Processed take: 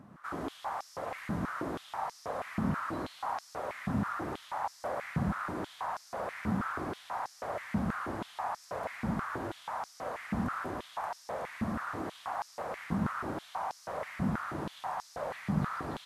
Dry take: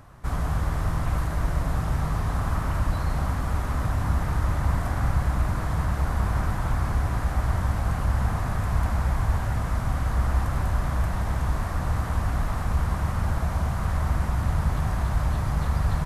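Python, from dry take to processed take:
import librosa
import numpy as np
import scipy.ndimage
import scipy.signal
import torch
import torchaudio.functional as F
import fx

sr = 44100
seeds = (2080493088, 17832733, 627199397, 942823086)

y = fx.tilt_eq(x, sr, slope=-2.0)
y = y + 10.0 ** (-6.5 / 20.0) * np.pad(y, (int(113 * sr / 1000.0), 0))[:len(y)]
y = fx.filter_held_highpass(y, sr, hz=6.2, low_hz=210.0, high_hz=5300.0)
y = y * 10.0 ** (-7.5 / 20.0)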